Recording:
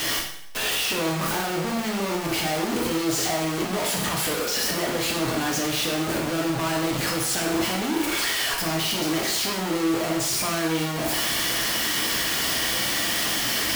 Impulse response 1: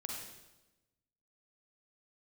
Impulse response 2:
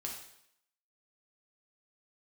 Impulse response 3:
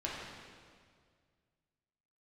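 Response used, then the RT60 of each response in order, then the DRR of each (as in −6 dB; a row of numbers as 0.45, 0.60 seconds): 2; 1.0, 0.70, 2.0 seconds; −1.5, −1.0, −5.5 decibels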